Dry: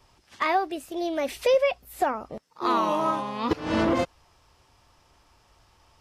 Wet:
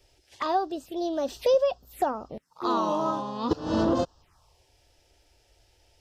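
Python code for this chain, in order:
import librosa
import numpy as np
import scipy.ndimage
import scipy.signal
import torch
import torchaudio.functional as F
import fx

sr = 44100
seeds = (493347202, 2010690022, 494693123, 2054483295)

y = fx.env_phaser(x, sr, low_hz=170.0, high_hz=2200.0, full_db=-29.0)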